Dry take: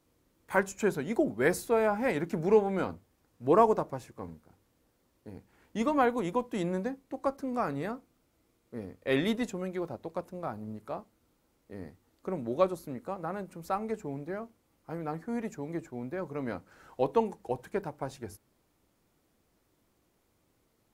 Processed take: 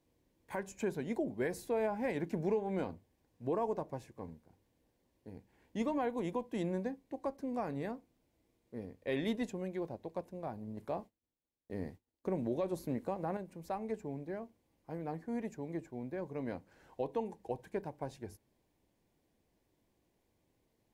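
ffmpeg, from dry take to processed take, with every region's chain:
-filter_complex "[0:a]asettb=1/sr,asplit=3[a][b][c];[a]atrim=end=10.774[d];[b]atrim=start=10.77:end=13.37,asetpts=PTS-STARTPTS,afade=t=in:d=0.004:c=qsin,afade=t=out:st=2.596:d=0.004:c=qsin,agate=range=-33dB:threshold=-56dB:ratio=3:release=100:detection=peak,acontrast=69[e];[c]atrim=start=13.366[f];[d][e]acrossfade=d=0.004:c1=hsin:c2=qsin[g];[g][f]acrossfade=d=0.004:c1=qsin:c2=hsin,highshelf=f=4.3k:g=-5.5,alimiter=limit=-20.5dB:level=0:latency=1:release=165,equalizer=f=1.3k:t=o:w=0.26:g=-14.5,volume=-4dB"

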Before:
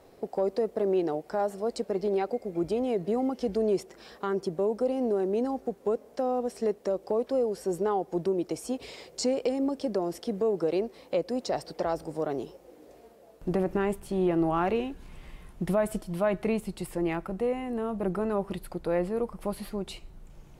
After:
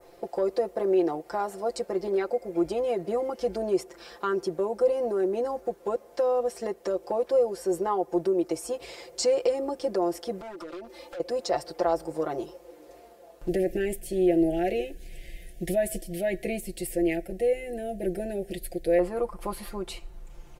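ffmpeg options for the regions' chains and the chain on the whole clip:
-filter_complex "[0:a]asettb=1/sr,asplit=3[a][b][c];[a]atrim=end=10.414[d];[b]atrim=start=10.41:end=11.2,asetpts=PTS-STARTPTS,afade=t=in:d=0.004:c=qsin,afade=t=out:st=0.786:d=0.004:c=qsin,aecho=1:1:3.4:0.81,atrim=end_sample=34839,acompressor=threshold=-36dB:ratio=20:attack=3.2:release=140:knee=1:detection=peak,aeval=exprs='0.0141*(abs(mod(val(0)/0.0141+3,4)-2)-1)':c=same[e];[c]atrim=start=11.196[f];[d][e]acrossfade=d=0.004:c1=hsin:c2=qsin[g];[g][f]acrossfade=d=0.004:c1=qsin:c2=hsin,asettb=1/sr,asplit=3[h][i][j];[h]atrim=end=13.484[k];[i]atrim=start=13.48:end=18.99,asetpts=PTS-STARTPTS,afade=t=in:d=0.004:c=qsin,afade=t=out:st=5.506:d=0.004:c=qsin,asuperstop=centerf=1100:order=8:qfactor=1.1,highshelf=f=9.4k:g=9.5[l];[j]atrim=start=18.986[m];[k][l]acrossfade=d=0.004:c1=hsin:c2=qsin[n];[n][m]acrossfade=d=0.004:c1=qsin:c2=hsin,equalizer=f=180:t=o:w=0.99:g=-11.5,aecho=1:1:5.8:0.8,adynamicequalizer=threshold=0.00251:dfrequency=3500:dqfactor=0.99:tfrequency=3500:tqfactor=0.99:attack=5:release=100:ratio=0.375:range=2.5:mode=cutabove:tftype=bell,volume=2dB"

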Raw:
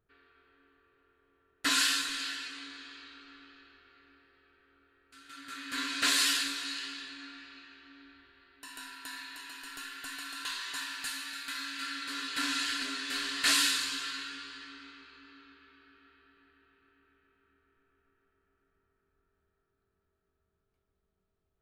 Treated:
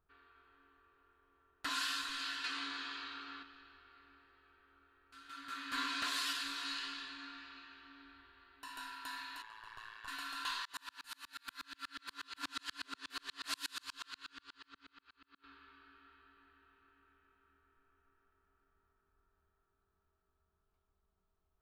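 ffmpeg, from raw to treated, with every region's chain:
-filter_complex "[0:a]asettb=1/sr,asplit=3[a][b][c];[a]atrim=end=2.444[d];[b]atrim=start=2.44:end=3.43,asetpts=PTS-STARTPTS,afade=t=in:d=0.004:c=qsin,afade=t=out:st=0.986:d=0.004:c=qsin,highpass=f=130:p=1,acontrast=78[e];[c]atrim=start=3.426[f];[d][e]acrossfade=d=0.004:c1=hsin:c2=qsin[g];[g][f]acrossfade=d=0.004:c1=qsin:c2=hsin,asettb=1/sr,asplit=3[h][i][j];[h]atrim=end=9.424[k];[i]atrim=start=9.42:end=10.08,asetpts=PTS-STARTPTS,afade=t=in:d=0.004:c=qsin,afade=t=out:st=0.656:d=0.004:c=qsin,lowpass=f=1.6k:p=1,aecho=1:1:1.8:0.88,atrim=end_sample=29106,tremolo=f=110:d=0.974[l];[j]atrim=start=10.076[m];[k][l]acrossfade=d=0.004:c1=hsin:c2=qsin[n];[n][m]acrossfade=d=0.004:c1=qsin:c2=hsin,asettb=1/sr,asplit=3[o][p][q];[o]atrim=end=10.654[r];[p]atrim=start=10.65:end=15.44,asetpts=PTS-STARTPTS,afade=t=in:d=0.004:c=qsin,afade=t=out:st=4.786:d=0.004:c=qsin,highshelf=f=7.9k:g=7,aeval=exprs='val(0)*pow(10,-39*if(lt(mod(-8.3*n/s,1),2*abs(-8.3)/1000),1-mod(-8.3*n/s,1)/(2*abs(-8.3)/1000),(mod(-8.3*n/s,1)-2*abs(-8.3)/1000)/(1-2*abs(-8.3)/1000))/20)':c=same[s];[q]atrim=start=15.436[t];[r][s]acrossfade=d=0.004:c1=hsin:c2=qsin[u];[u][t]acrossfade=d=0.004:c1=qsin:c2=hsin,highshelf=f=4.1k:g=-8,alimiter=level_in=3dB:limit=-24dB:level=0:latency=1:release=377,volume=-3dB,equalizer=f=125:t=o:w=1:g=-8,equalizer=f=250:t=o:w=1:g=-5,equalizer=f=500:t=o:w=1:g=-8,equalizer=f=1k:t=o:w=1:g=5,equalizer=f=2k:t=o:w=1:g=-6,equalizer=f=8k:t=o:w=1:g=-5,volume=2.5dB"

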